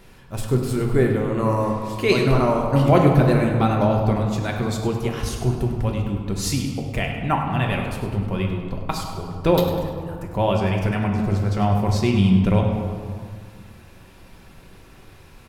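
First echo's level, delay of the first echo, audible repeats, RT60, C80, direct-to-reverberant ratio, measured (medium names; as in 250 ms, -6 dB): -11.0 dB, 100 ms, 1, 1.9 s, 4.5 dB, 0.5 dB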